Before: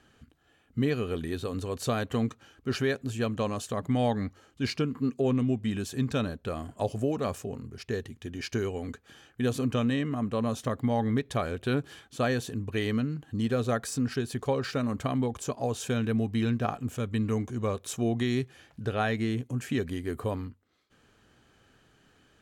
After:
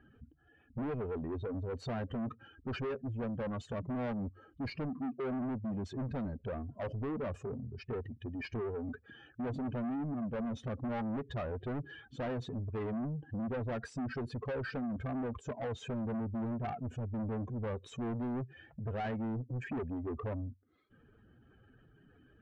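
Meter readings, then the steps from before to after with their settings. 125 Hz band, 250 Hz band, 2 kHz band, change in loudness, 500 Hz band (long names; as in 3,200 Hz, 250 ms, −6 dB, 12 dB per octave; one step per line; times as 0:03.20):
−8.0 dB, −7.5 dB, −9.5 dB, −8.0 dB, −8.5 dB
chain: expanding power law on the bin magnitudes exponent 2.1
soft clipping −34 dBFS, distortion −7 dB
low-pass filter 2,700 Hz 12 dB per octave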